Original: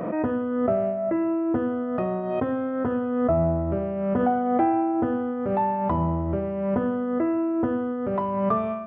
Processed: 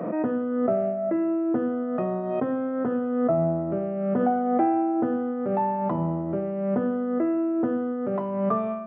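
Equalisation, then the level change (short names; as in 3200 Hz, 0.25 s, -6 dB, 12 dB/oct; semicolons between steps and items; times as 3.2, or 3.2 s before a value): HPF 140 Hz 24 dB/oct; high shelf 2200 Hz -9 dB; notch 980 Hz, Q 24; 0.0 dB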